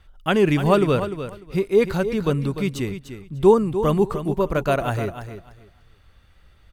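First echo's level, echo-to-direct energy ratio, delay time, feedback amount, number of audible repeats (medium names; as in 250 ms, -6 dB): -10.5 dB, -10.5 dB, 298 ms, 19%, 2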